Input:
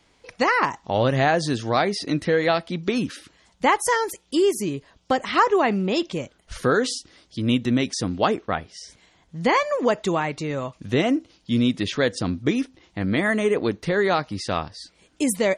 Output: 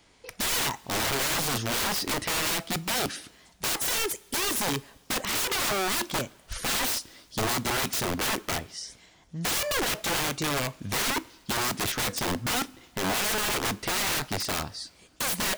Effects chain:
high-shelf EQ 7,800 Hz +6.5 dB
wrap-around overflow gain 22.5 dB
convolution reverb, pre-delay 3 ms, DRR 16.5 dB

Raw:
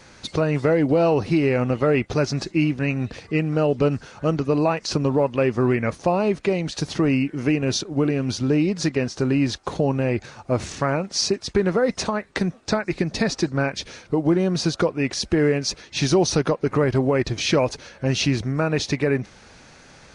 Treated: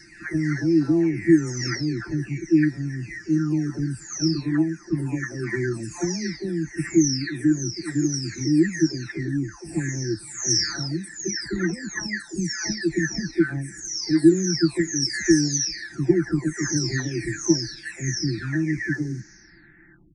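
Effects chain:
every frequency bin delayed by itself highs early, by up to 946 ms
drawn EQ curve 120 Hz 0 dB, 230 Hz −4 dB, 330 Hz +8 dB, 500 Hz −29 dB, 750 Hz −16 dB, 1,200 Hz −15 dB, 1,800 Hz +10 dB, 3,100 Hz −29 dB, 5,500 Hz +9 dB, 12,000 Hz −3 dB

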